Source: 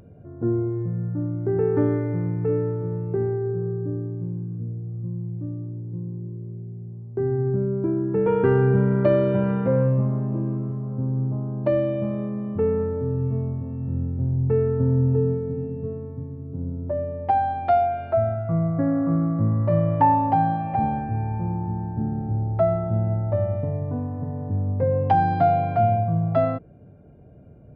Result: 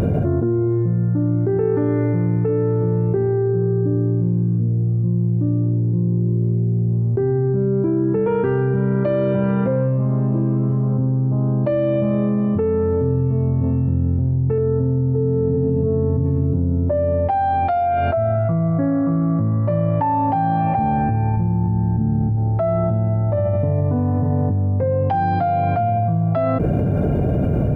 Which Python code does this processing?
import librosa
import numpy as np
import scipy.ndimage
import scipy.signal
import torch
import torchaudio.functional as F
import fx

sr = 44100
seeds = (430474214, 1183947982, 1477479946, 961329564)

y = fx.lowpass(x, sr, hz=1300.0, slope=12, at=(14.58, 16.26))
y = fx.bass_treble(y, sr, bass_db=8, treble_db=3, at=(21.37, 22.37))
y = fx.env_flatten(y, sr, amount_pct=100)
y = y * 10.0 ** (-4.5 / 20.0)